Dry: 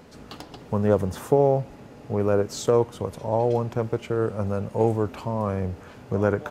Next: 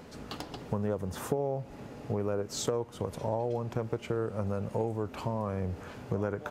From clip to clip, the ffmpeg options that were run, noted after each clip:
ffmpeg -i in.wav -af "acompressor=threshold=-28dB:ratio=6" out.wav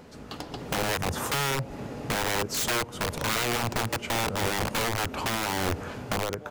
ffmpeg -i in.wav -af "dynaudnorm=framelen=160:gausssize=7:maxgain=8dB,aeval=exprs='(mod(11.2*val(0)+1,2)-1)/11.2':channel_layout=same" out.wav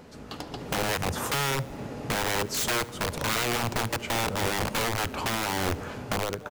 ffmpeg -i in.wav -af "aecho=1:1:72|144|216|288|360:0.0794|0.0477|0.0286|0.0172|0.0103" out.wav

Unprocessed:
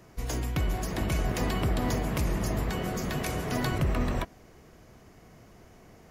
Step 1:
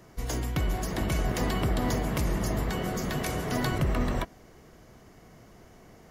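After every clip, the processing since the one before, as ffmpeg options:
ffmpeg -i in.wav -af "equalizer=frequency=81:width_type=o:width=0.77:gain=-2.5,bandreject=frequency=2500:width=17,volume=1dB" out.wav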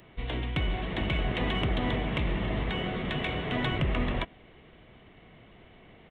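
ffmpeg -i in.wav -af "aresample=8000,aresample=44100,aexciter=amount=1.5:drive=9.1:freq=2100,volume=-1.5dB" out.wav

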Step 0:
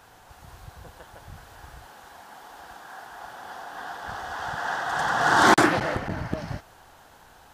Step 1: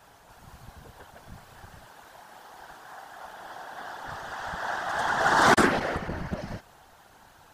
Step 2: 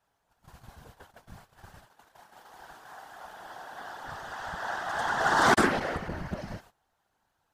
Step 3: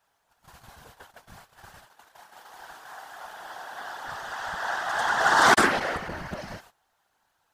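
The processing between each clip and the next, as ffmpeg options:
ffmpeg -i in.wav -af "afftfilt=real='hypot(re,im)*cos(2*PI*random(0))':imag='hypot(re,im)*sin(2*PI*random(1))':win_size=512:overlap=0.75,volume=3.5dB" out.wav
ffmpeg -i in.wav -af "agate=range=-19dB:threshold=-48dB:ratio=16:detection=peak,volume=-2.5dB" out.wav
ffmpeg -i in.wav -af "lowshelf=frequency=490:gain=-9.5,volume=6dB" out.wav

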